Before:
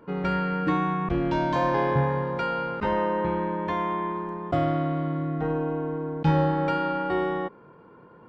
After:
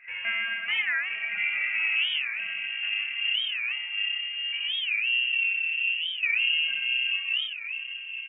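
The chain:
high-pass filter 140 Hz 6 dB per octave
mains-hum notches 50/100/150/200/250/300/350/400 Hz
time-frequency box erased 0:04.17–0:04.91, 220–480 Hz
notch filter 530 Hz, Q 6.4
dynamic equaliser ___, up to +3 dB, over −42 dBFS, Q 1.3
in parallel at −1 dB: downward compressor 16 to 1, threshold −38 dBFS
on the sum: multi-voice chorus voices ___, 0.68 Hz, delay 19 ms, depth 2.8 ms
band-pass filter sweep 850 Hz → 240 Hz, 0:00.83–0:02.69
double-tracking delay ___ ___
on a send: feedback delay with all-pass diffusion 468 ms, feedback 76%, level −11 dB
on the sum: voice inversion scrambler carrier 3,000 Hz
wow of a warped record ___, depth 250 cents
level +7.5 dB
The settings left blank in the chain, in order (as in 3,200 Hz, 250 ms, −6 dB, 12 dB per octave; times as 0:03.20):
190 Hz, 2, 33 ms, −13 dB, 45 rpm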